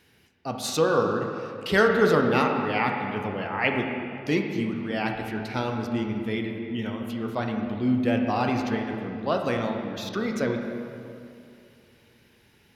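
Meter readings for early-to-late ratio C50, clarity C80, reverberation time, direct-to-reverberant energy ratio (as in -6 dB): 4.0 dB, 5.0 dB, 2.6 s, 2.5 dB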